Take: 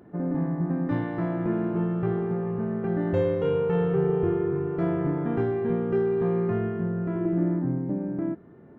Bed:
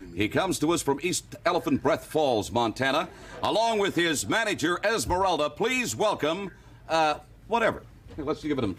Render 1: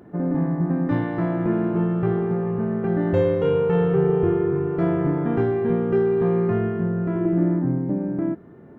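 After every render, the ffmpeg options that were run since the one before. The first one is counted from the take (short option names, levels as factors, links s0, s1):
-af "volume=1.68"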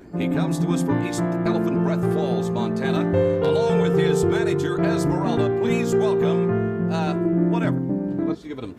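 -filter_complex "[1:a]volume=0.531[s0];[0:a][s0]amix=inputs=2:normalize=0"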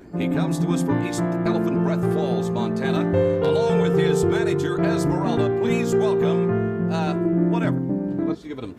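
-af anull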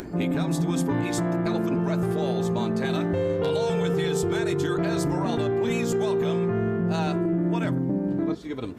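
-filter_complex "[0:a]acrossover=split=2600[s0][s1];[s0]alimiter=limit=0.133:level=0:latency=1[s2];[s2][s1]amix=inputs=2:normalize=0,acompressor=mode=upward:threshold=0.0316:ratio=2.5"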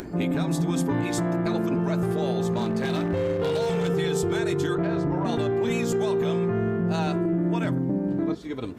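-filter_complex "[0:a]asettb=1/sr,asplit=3[s0][s1][s2];[s0]atrim=end=2.524[s3];[s1]atrim=start=2.52:end=3.88,asetpts=PTS-STARTPTS,afade=t=in:d=0.004:c=qsin,afade=t=out:st=1.356:d=0.004:c=qsin,aeval=exprs='0.112*(abs(mod(val(0)/0.112+3,4)-2)-1)':c=same[s4];[s2]atrim=start=3.876[s5];[s3][s4]acrossfade=d=0.004:c1=hsin:c2=qsin[s6];[s6][s5]acrossfade=d=0.004:c1=qsin:c2=hsin,asettb=1/sr,asplit=3[s7][s8][s9];[s7]atrim=end=4.754[s10];[s8]atrim=start=4.75:end=5.25,asetpts=PTS-STARTPTS,afade=t=in:d=0.004:c=qsin,afade=t=out:st=0.496:d=0.004:c=qsin,adynamicsmooth=sensitivity=1:basefreq=2000[s11];[s9]atrim=start=5.246[s12];[s10][s11]acrossfade=d=0.004:c1=hsin:c2=qsin[s13];[s13][s12]acrossfade=d=0.004:c1=qsin:c2=hsin"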